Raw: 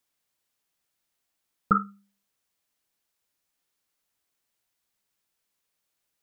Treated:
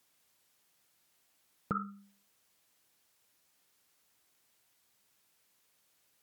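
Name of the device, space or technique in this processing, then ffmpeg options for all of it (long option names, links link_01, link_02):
podcast mastering chain: -af "highpass=69,acompressor=threshold=-35dB:ratio=3,alimiter=level_in=5dB:limit=-24dB:level=0:latency=1:release=128,volume=-5dB,volume=8dB" -ar 48000 -c:a libmp3lame -b:a 96k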